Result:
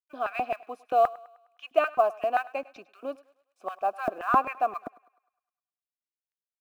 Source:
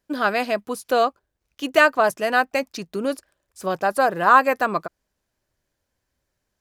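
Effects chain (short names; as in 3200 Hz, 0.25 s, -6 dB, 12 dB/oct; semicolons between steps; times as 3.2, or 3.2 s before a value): vowel filter a; notch 4600 Hz, Q 12; companded quantiser 8-bit; LFO high-pass square 3.8 Hz 270–1700 Hz; thinning echo 0.103 s, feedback 52%, high-pass 440 Hz, level -20 dB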